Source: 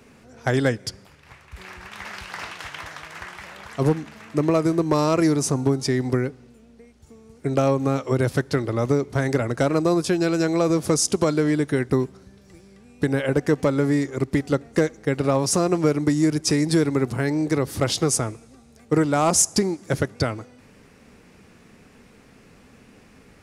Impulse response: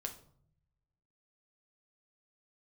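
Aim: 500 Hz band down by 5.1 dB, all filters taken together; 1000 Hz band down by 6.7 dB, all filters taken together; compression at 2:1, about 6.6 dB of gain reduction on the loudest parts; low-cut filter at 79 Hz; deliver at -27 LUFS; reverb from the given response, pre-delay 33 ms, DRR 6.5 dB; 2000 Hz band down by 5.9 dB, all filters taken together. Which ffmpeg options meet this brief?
-filter_complex "[0:a]highpass=79,equalizer=f=500:t=o:g=-5,equalizer=f=1k:t=o:g=-6,equalizer=f=2k:t=o:g=-5,acompressor=threshold=-29dB:ratio=2,asplit=2[a][b];[1:a]atrim=start_sample=2205,adelay=33[c];[b][c]afir=irnorm=-1:irlink=0,volume=-5dB[d];[a][d]amix=inputs=2:normalize=0,volume=2.5dB"

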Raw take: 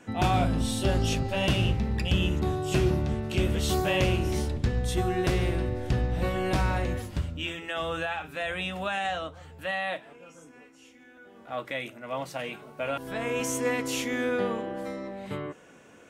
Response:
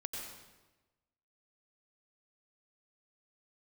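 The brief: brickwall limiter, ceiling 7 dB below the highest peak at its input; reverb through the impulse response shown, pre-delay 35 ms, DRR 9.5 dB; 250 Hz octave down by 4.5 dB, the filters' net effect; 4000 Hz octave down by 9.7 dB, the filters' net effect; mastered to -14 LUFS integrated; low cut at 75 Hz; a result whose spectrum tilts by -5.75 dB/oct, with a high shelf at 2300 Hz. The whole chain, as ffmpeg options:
-filter_complex "[0:a]highpass=75,equalizer=f=250:t=o:g=-6.5,highshelf=f=2.3k:g=-6.5,equalizer=f=4k:t=o:g=-8,alimiter=limit=-22dB:level=0:latency=1,asplit=2[a][b];[1:a]atrim=start_sample=2205,adelay=35[c];[b][c]afir=irnorm=-1:irlink=0,volume=-9.5dB[d];[a][d]amix=inputs=2:normalize=0,volume=19dB"

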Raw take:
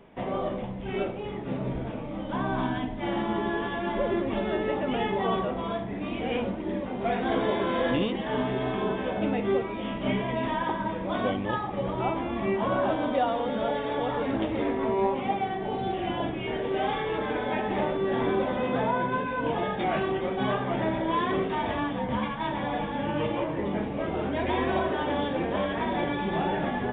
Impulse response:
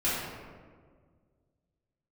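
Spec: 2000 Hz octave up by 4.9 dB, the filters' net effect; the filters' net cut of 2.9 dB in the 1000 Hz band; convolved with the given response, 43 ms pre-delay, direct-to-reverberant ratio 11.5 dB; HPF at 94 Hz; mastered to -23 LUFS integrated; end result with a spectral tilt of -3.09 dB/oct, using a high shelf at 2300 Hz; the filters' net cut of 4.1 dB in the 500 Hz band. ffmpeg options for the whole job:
-filter_complex "[0:a]highpass=94,equalizer=f=500:t=o:g=-5,equalizer=f=1k:t=o:g=-4,equalizer=f=2k:t=o:g=4,highshelf=f=2.3k:g=7.5,asplit=2[a][b];[1:a]atrim=start_sample=2205,adelay=43[c];[b][c]afir=irnorm=-1:irlink=0,volume=-22.5dB[d];[a][d]amix=inputs=2:normalize=0,volume=6.5dB"

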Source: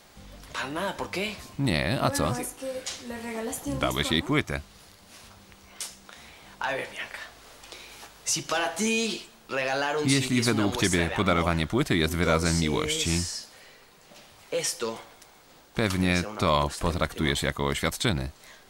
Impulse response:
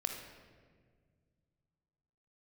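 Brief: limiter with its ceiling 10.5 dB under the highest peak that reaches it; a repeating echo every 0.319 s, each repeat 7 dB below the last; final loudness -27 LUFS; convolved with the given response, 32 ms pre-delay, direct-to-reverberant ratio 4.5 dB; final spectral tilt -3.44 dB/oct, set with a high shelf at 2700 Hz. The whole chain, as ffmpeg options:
-filter_complex "[0:a]highshelf=f=2.7k:g=3.5,alimiter=limit=-17dB:level=0:latency=1,aecho=1:1:319|638|957|1276|1595:0.447|0.201|0.0905|0.0407|0.0183,asplit=2[a][b];[1:a]atrim=start_sample=2205,adelay=32[c];[b][c]afir=irnorm=-1:irlink=0,volume=-6dB[d];[a][d]amix=inputs=2:normalize=0"

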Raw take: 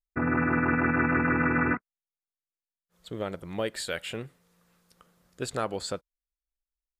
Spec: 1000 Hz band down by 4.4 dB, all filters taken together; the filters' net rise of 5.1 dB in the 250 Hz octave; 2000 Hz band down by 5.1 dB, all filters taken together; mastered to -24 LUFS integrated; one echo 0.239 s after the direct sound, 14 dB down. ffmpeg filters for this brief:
-af "equalizer=f=250:t=o:g=6,equalizer=f=1k:t=o:g=-4,equalizer=f=2k:t=o:g=-5.5,aecho=1:1:239:0.2,volume=2dB"

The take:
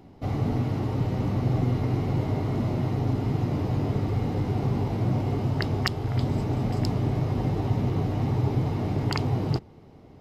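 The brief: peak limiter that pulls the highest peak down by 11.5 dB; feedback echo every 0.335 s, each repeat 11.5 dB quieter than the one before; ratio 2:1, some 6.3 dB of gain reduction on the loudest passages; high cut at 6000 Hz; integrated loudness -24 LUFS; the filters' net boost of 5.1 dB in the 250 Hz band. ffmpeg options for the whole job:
-af "lowpass=6k,equalizer=f=250:t=o:g=6.5,acompressor=threshold=-30dB:ratio=2,alimiter=level_in=2.5dB:limit=-24dB:level=0:latency=1,volume=-2.5dB,aecho=1:1:335|670|1005:0.266|0.0718|0.0194,volume=10.5dB"

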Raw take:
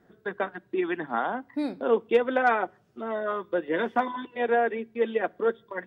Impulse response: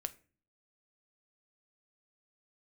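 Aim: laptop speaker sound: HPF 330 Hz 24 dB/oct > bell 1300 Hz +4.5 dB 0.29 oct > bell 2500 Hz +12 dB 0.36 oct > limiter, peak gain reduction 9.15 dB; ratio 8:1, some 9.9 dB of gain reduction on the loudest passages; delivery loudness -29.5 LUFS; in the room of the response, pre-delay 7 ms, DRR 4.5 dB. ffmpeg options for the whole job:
-filter_complex "[0:a]acompressor=threshold=-27dB:ratio=8,asplit=2[a][b];[1:a]atrim=start_sample=2205,adelay=7[c];[b][c]afir=irnorm=-1:irlink=0,volume=-3dB[d];[a][d]amix=inputs=2:normalize=0,highpass=f=330:w=0.5412,highpass=f=330:w=1.3066,equalizer=f=1.3k:t=o:w=0.29:g=4.5,equalizer=f=2.5k:t=o:w=0.36:g=12,volume=4.5dB,alimiter=limit=-19dB:level=0:latency=1"

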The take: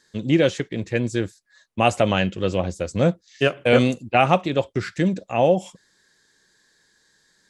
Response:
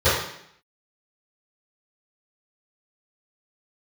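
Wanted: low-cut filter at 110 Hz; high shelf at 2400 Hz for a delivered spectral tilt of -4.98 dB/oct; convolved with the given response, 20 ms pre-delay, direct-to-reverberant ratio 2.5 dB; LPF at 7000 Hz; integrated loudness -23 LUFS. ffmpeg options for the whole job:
-filter_complex "[0:a]highpass=110,lowpass=7k,highshelf=f=2.4k:g=3.5,asplit=2[a][b];[1:a]atrim=start_sample=2205,adelay=20[c];[b][c]afir=irnorm=-1:irlink=0,volume=-24dB[d];[a][d]amix=inputs=2:normalize=0,volume=-4.5dB"

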